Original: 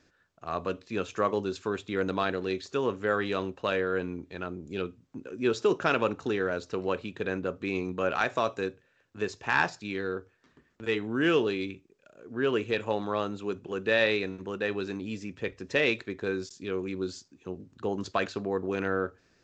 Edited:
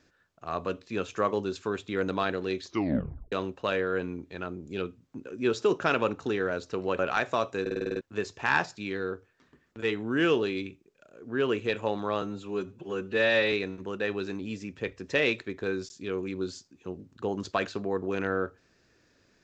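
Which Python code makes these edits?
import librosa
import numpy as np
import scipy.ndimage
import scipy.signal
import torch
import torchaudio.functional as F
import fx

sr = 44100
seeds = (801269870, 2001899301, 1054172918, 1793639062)

y = fx.edit(x, sr, fx.tape_stop(start_s=2.64, length_s=0.68),
    fx.cut(start_s=6.99, length_s=1.04),
    fx.stutter_over(start_s=8.65, slice_s=0.05, count=8),
    fx.stretch_span(start_s=13.26, length_s=0.87, factor=1.5), tone=tone)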